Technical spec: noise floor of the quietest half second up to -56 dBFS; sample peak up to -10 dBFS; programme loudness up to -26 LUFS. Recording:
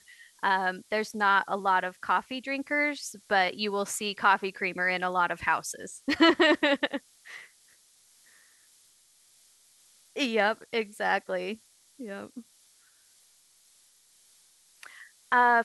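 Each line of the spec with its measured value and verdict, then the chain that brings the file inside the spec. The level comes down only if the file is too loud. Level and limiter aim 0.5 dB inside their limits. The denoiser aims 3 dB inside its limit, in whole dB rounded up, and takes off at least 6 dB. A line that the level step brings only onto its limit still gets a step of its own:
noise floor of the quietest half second -62 dBFS: pass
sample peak -8.5 dBFS: fail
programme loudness -27.0 LUFS: pass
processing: peak limiter -10.5 dBFS

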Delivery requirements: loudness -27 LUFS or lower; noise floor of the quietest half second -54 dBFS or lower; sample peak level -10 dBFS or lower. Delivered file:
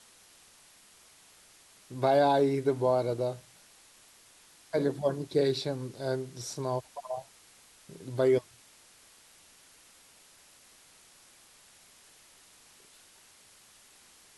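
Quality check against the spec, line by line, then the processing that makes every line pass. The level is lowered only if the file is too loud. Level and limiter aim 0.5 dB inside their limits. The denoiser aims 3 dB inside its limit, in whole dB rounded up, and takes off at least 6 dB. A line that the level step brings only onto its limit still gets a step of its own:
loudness -29.5 LUFS: pass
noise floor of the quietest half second -58 dBFS: pass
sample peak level -14.0 dBFS: pass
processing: none needed

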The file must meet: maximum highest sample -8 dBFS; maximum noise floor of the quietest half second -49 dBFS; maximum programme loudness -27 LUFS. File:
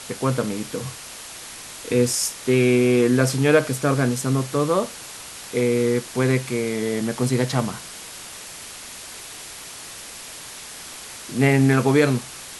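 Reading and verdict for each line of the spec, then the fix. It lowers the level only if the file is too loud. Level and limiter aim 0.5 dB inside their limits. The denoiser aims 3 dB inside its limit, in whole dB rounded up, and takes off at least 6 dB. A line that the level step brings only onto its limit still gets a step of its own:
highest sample -5.0 dBFS: fail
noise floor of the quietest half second -38 dBFS: fail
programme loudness -21.0 LUFS: fail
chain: noise reduction 8 dB, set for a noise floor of -38 dBFS; trim -6.5 dB

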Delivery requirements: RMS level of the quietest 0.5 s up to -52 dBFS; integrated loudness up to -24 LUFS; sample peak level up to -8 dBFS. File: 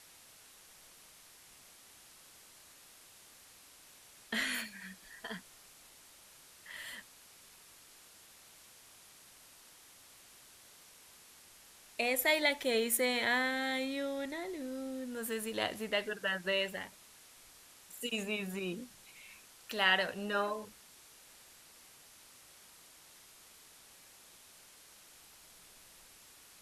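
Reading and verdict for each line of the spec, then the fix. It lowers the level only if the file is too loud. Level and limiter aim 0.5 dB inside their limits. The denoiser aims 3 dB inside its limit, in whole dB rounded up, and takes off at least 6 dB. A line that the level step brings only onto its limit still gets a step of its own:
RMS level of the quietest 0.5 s -59 dBFS: pass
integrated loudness -34.5 LUFS: pass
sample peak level -14.5 dBFS: pass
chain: none needed

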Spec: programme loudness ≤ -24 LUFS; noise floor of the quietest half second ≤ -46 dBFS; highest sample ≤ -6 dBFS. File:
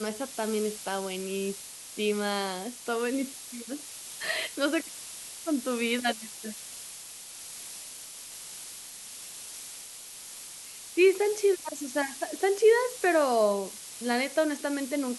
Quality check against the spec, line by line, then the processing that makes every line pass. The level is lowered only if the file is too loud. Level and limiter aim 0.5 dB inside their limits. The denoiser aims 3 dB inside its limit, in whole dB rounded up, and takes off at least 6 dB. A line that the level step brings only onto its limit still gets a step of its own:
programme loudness -29.5 LUFS: pass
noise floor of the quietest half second -44 dBFS: fail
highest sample -11.0 dBFS: pass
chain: noise reduction 6 dB, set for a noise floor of -44 dBFS

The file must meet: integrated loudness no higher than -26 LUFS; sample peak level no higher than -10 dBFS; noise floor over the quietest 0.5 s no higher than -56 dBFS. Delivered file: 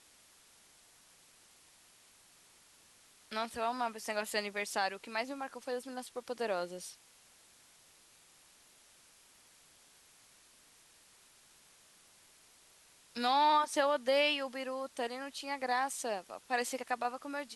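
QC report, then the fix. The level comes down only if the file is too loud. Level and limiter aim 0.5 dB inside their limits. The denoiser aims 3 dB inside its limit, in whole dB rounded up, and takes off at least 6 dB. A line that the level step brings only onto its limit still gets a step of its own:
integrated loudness -35.0 LUFS: pass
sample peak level -18.5 dBFS: pass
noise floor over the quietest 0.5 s -63 dBFS: pass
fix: none needed

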